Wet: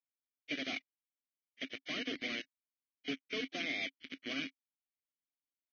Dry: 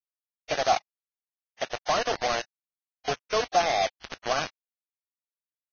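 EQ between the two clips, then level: vowel filter i; +5.5 dB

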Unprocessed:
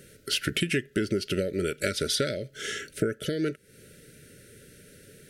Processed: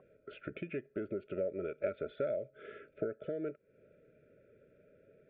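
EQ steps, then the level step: cascade formant filter a; bass shelf 170 Hz -5 dB; +14.5 dB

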